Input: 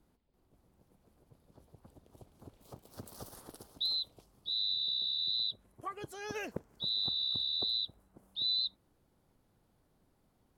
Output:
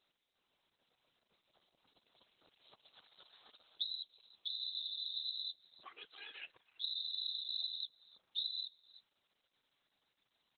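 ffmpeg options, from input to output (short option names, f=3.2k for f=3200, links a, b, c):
-filter_complex "[0:a]acrossover=split=800|2300|6000[a][b][c][d];[a]acompressor=threshold=-51dB:ratio=4[e];[b]acompressor=threshold=-56dB:ratio=4[f];[c]acompressor=threshold=-34dB:ratio=4[g];[d]acompressor=threshold=-53dB:ratio=4[h];[e][f][g][h]amix=inputs=4:normalize=0,crystalizer=i=3:c=0,asplit=2[i][j];[j]adelay=320,highpass=300,lowpass=3.4k,asoftclip=type=hard:threshold=-25.5dB,volume=-28dB[k];[i][k]amix=inputs=2:normalize=0,acompressor=threshold=-43dB:ratio=5,afftfilt=real='hypot(re,im)*cos(2*PI*random(0))':imag='hypot(re,im)*sin(2*PI*random(1))':win_size=512:overlap=0.75,aderivative,volume=17.5dB" -ar 48000 -c:a libopus -b:a 8k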